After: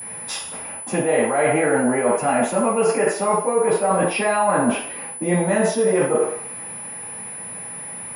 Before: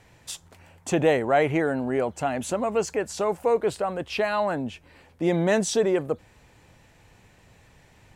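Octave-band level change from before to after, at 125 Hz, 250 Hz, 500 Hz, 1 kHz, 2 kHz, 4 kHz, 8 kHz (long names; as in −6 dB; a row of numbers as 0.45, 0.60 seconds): +3.5, +5.0, +5.0, +7.5, +6.0, +2.0, +11.0 decibels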